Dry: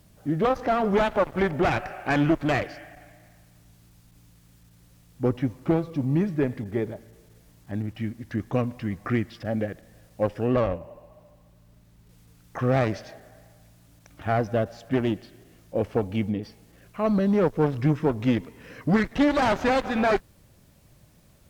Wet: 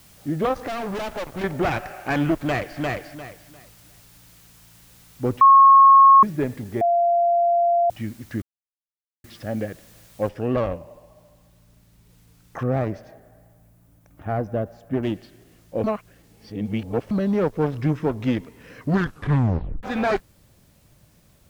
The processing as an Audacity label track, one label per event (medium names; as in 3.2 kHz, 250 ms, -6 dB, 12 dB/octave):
0.670000	1.440000	overload inside the chain gain 27 dB
2.360000	2.790000	echo throw 350 ms, feedback 25%, level -2 dB
5.410000	6.230000	bleep 1.09 kHz -7.5 dBFS
6.810000	7.900000	bleep 690 Hz -15.5 dBFS
8.420000	9.240000	mute
10.290000	10.290000	noise floor step -53 dB -67 dB
12.630000	15.030000	peaking EQ 4.2 kHz -12.5 dB 2.7 oct
15.840000	17.110000	reverse
18.860000	18.860000	tape stop 0.97 s